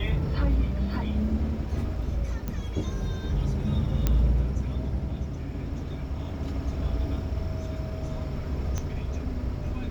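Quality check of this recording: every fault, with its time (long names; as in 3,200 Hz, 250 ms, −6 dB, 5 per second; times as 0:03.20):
0:02.48: click −18 dBFS
0:04.07: click −10 dBFS
0:08.78: click −18 dBFS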